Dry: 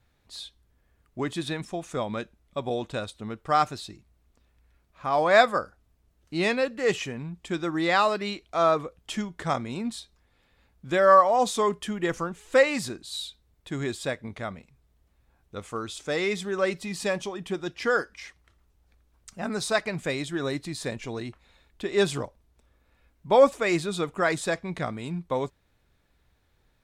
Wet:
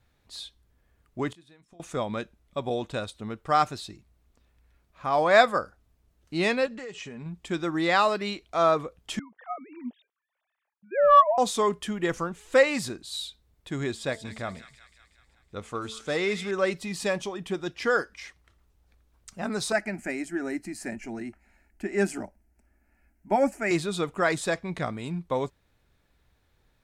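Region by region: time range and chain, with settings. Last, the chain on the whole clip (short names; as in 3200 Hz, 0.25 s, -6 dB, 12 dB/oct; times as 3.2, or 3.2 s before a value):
1.3–1.8 flipped gate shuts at -32 dBFS, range -25 dB + doubler 23 ms -13.5 dB
6.66–7.26 steep low-pass 9100 Hz 48 dB/oct + comb 4.8 ms, depth 42% + compressor 16:1, threshold -35 dBFS
9.19–11.38 sine-wave speech + overdrive pedal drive 9 dB, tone 1100 Hz, clips at -5 dBFS
13.88–16.51 high shelf 9600 Hz -8.5 dB + de-hum 220.9 Hz, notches 4 + thin delay 0.186 s, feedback 60%, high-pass 2100 Hz, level -7.5 dB
19.72–23.71 bell 200 Hz +9 dB 0.39 oct + fixed phaser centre 730 Hz, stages 8
whole clip: dry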